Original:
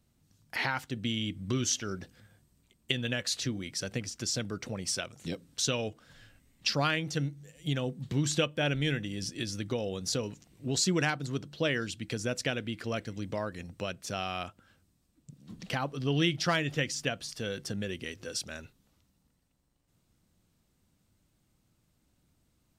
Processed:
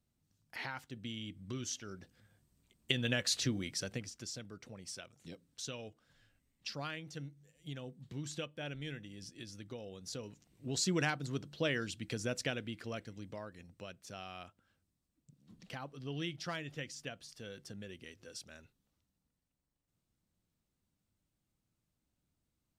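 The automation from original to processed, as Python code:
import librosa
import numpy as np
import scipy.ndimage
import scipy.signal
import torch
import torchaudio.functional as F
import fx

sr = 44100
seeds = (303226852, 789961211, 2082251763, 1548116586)

y = fx.gain(x, sr, db=fx.line((1.94, -11.0), (3.09, -1.0), (3.64, -1.0), (4.4, -13.5), (9.99, -13.5), (10.97, -4.5), (12.39, -4.5), (13.53, -12.5)))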